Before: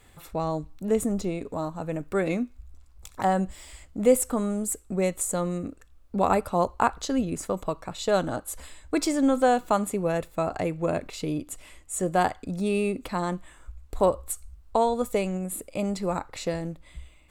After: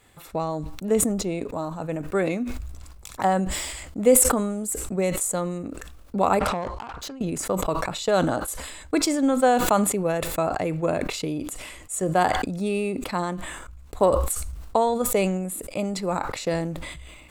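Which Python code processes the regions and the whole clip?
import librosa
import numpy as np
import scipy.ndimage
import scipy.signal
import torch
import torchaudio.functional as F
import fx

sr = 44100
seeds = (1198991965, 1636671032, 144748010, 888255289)

y = fx.chain(x, sr, fx.lowpass(hz=6500.0, slope=12),
    fx.over_compress(threshold_db=-34.0, ratio=-1.0),
    fx.tube_stage(drive_db=34.0, bias=0.3), at=(6.39, 7.21))
y = fx.low_shelf(y, sr, hz=64.0, db=-11.0)
y = fx.transient(y, sr, attack_db=3, sustain_db=-5)
y = fx.sustainer(y, sr, db_per_s=36.0)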